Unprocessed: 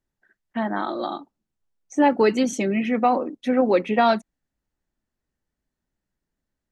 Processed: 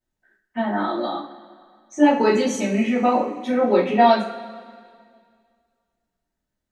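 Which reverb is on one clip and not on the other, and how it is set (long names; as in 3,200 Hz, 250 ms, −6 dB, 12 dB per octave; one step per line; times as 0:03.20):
coupled-rooms reverb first 0.36 s, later 2.1 s, from −18 dB, DRR −9 dB
level −8 dB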